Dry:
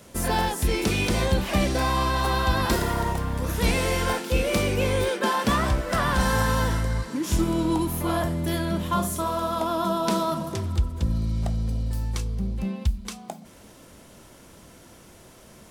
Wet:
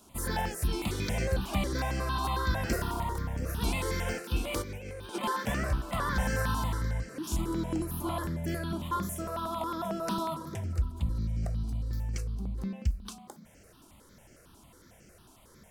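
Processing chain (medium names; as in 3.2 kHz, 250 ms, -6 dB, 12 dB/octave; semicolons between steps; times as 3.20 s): 4.62–5.22 s: compressor with a negative ratio -29 dBFS, ratio -0.5; stepped phaser 11 Hz 520–3700 Hz; trim -5 dB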